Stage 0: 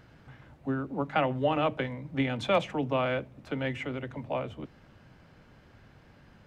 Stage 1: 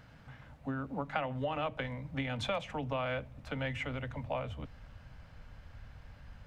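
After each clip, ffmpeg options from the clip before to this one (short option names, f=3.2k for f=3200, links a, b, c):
-af "asubboost=boost=6:cutoff=75,acompressor=threshold=-30dB:ratio=6,equalizer=f=360:t=o:w=0.36:g=-14.5"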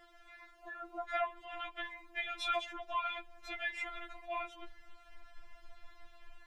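-af "afftfilt=real='re*4*eq(mod(b,16),0)':imag='im*4*eq(mod(b,16),0)':win_size=2048:overlap=0.75,volume=3.5dB"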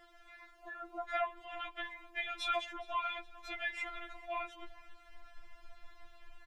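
-af "aecho=1:1:415|830|1245|1660:0.0708|0.0375|0.0199|0.0105"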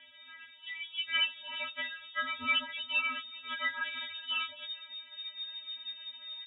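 -af "lowpass=f=3.1k:t=q:w=0.5098,lowpass=f=3.1k:t=q:w=0.6013,lowpass=f=3.1k:t=q:w=0.9,lowpass=f=3.1k:t=q:w=2.563,afreqshift=-3700,volume=5dB"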